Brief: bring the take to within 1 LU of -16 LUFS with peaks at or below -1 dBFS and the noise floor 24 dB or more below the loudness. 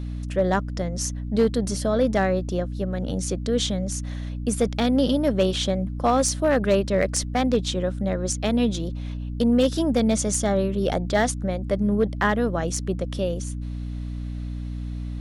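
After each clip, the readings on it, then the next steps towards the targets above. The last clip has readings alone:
clipped samples 0.3%; clipping level -12.0 dBFS; hum 60 Hz; highest harmonic 300 Hz; hum level -28 dBFS; loudness -24.0 LUFS; peak level -12.0 dBFS; loudness target -16.0 LUFS
-> clip repair -12 dBFS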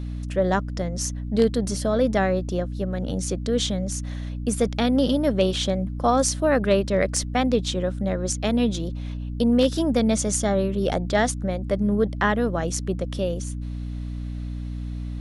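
clipped samples 0.0%; hum 60 Hz; highest harmonic 300 Hz; hum level -28 dBFS
-> hum notches 60/120/180/240/300 Hz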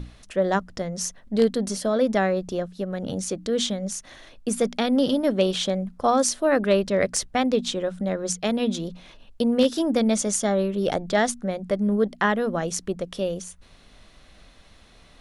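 hum not found; loudness -24.5 LUFS; peak level -5.0 dBFS; loudness target -16.0 LUFS
-> trim +8.5 dB; peak limiter -1 dBFS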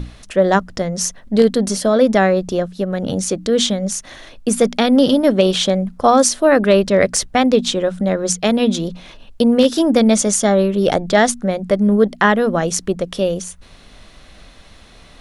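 loudness -16.0 LUFS; peak level -1.0 dBFS; noise floor -44 dBFS

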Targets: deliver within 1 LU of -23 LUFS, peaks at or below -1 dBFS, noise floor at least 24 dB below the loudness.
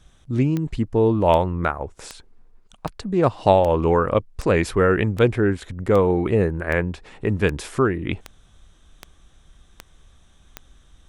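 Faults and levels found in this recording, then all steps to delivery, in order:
clicks found 14; loudness -21.0 LUFS; peak level -2.5 dBFS; loudness target -23.0 LUFS
-> de-click; trim -2 dB

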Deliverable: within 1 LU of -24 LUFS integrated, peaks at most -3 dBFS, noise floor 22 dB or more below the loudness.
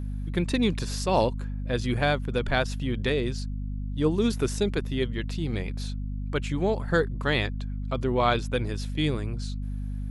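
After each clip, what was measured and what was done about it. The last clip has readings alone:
hum 50 Hz; highest harmonic 250 Hz; hum level -29 dBFS; loudness -28.0 LUFS; peak level -9.0 dBFS; loudness target -24.0 LUFS
-> hum notches 50/100/150/200/250 Hz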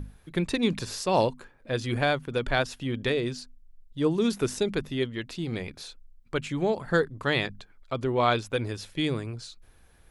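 hum not found; loudness -28.5 LUFS; peak level -10.0 dBFS; loudness target -24.0 LUFS
-> trim +4.5 dB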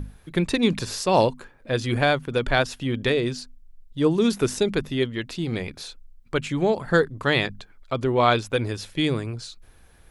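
loudness -24.0 LUFS; peak level -5.5 dBFS; noise floor -53 dBFS

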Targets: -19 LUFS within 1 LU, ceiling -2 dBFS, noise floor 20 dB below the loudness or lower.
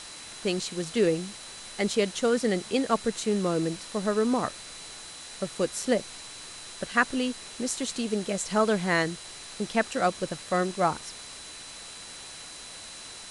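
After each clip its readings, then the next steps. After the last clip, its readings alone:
steady tone 4 kHz; tone level -47 dBFS; noise floor -43 dBFS; noise floor target -48 dBFS; loudness -28.0 LUFS; peak level -8.5 dBFS; loudness target -19.0 LUFS
-> band-stop 4 kHz, Q 30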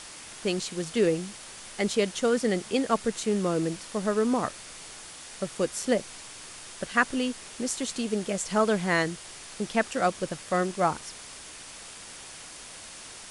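steady tone not found; noise floor -44 dBFS; noise floor target -48 dBFS
-> noise reduction 6 dB, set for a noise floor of -44 dBFS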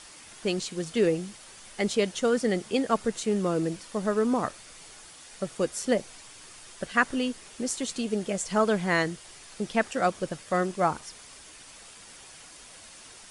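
noise floor -49 dBFS; loudness -28.0 LUFS; peak level -8.0 dBFS; loudness target -19.0 LUFS
-> trim +9 dB; peak limiter -2 dBFS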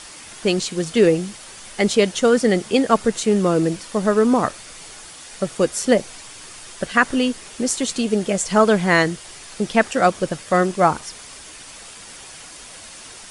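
loudness -19.0 LUFS; peak level -2.0 dBFS; noise floor -40 dBFS

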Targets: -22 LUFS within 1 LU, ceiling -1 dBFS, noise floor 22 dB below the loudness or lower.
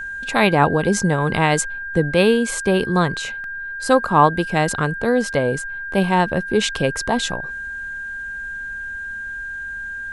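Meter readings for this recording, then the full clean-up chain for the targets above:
dropouts 1; longest dropout 1.5 ms; steady tone 1.6 kHz; tone level -27 dBFS; loudness -20.0 LUFS; peak level -1.5 dBFS; loudness target -22.0 LUFS
-> interpolate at 3.44 s, 1.5 ms; band-stop 1.6 kHz, Q 30; trim -2 dB

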